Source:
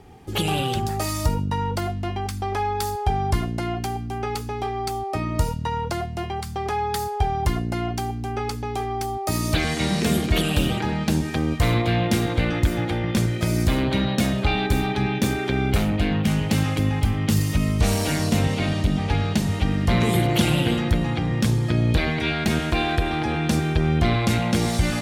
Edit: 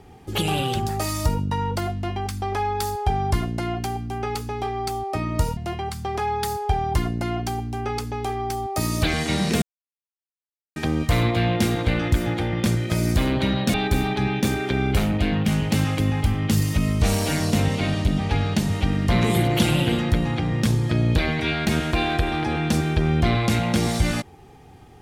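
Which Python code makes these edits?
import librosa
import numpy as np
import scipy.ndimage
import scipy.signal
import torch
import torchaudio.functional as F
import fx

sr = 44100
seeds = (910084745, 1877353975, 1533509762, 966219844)

y = fx.edit(x, sr, fx.cut(start_s=5.57, length_s=0.51),
    fx.silence(start_s=10.13, length_s=1.14),
    fx.cut(start_s=14.25, length_s=0.28), tone=tone)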